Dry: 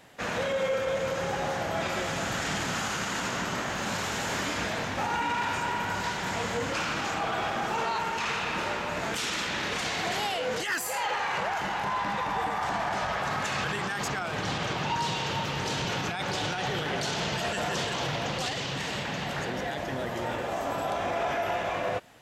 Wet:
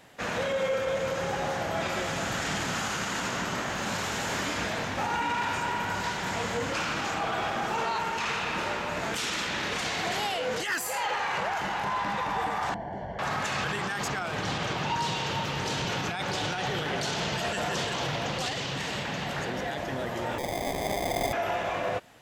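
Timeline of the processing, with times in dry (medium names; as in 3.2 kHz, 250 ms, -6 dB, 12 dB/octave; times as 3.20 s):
12.74–13.19 s: boxcar filter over 35 samples
20.38–21.33 s: sample-rate reducer 1.4 kHz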